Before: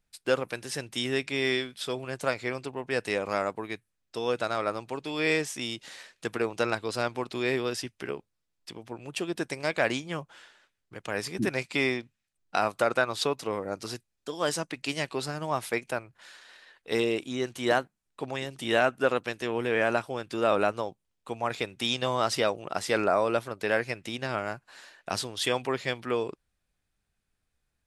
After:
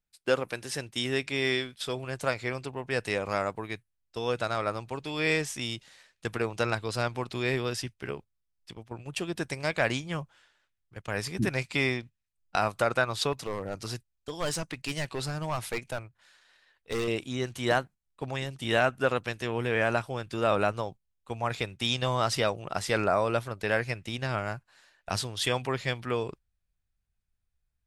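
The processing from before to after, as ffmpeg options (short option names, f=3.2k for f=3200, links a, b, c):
-filter_complex "[0:a]asettb=1/sr,asplit=3[a][b][c];[a]atrim=end=13.324[d];[b]atrim=start=13.32:end=17.08,asetpts=PTS-STARTPTS,afade=t=in:d=0.004:c=qsin,afade=t=out:st=3.756:d=0.004:c=qsin,volume=25dB,asoftclip=hard,volume=-25dB[e];[c]atrim=start=17.076[f];[d][e]acrossfade=d=0.004:c1=hsin:c2=qsin[g];[g][f]acrossfade=d=0.004:c1=qsin:c2=hsin,agate=range=-10dB:threshold=-42dB:ratio=16:detection=peak,asubboost=boost=3.5:cutoff=140"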